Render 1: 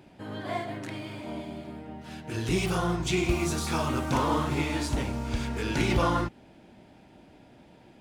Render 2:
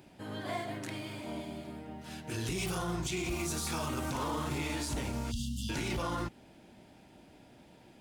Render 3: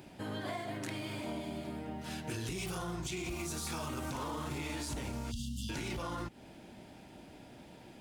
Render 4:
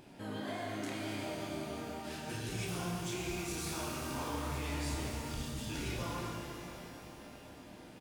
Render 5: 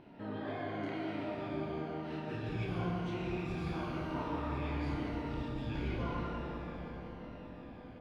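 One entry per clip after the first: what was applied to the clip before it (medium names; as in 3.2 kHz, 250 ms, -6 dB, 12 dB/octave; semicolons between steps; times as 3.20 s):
spectral selection erased 5.31–5.70 s, 270–2700 Hz; treble shelf 5.2 kHz +9.5 dB; peak limiter -22.5 dBFS, peak gain reduction 10 dB; trim -3.5 dB
compression, threshold -40 dBFS, peak gain reduction 9 dB; trim +4 dB
vibrato 5.7 Hz 26 cents; doubling 28 ms -5.5 dB; pitch-shifted reverb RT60 3.1 s, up +12 st, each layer -8 dB, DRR -0.5 dB; trim -4.5 dB
drifting ripple filter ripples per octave 1.9, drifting -0.97 Hz, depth 6 dB; distance through air 360 m; filtered feedback delay 186 ms, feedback 79%, low-pass 1.2 kHz, level -5 dB; trim +1 dB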